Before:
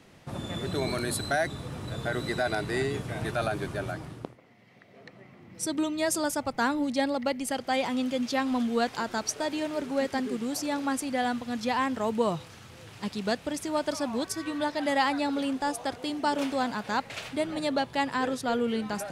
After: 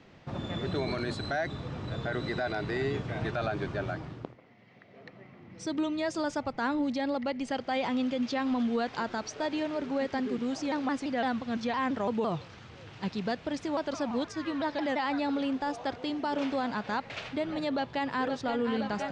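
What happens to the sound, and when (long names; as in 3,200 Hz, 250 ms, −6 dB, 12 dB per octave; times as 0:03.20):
0:10.38–0:14.99: pitch modulation by a square or saw wave saw down 5.9 Hz, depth 160 cents
0:17.74–0:18.26: delay throw 520 ms, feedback 80%, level −8 dB
whole clip: brickwall limiter −21.5 dBFS; Bessel low-pass filter 4,100 Hz, order 8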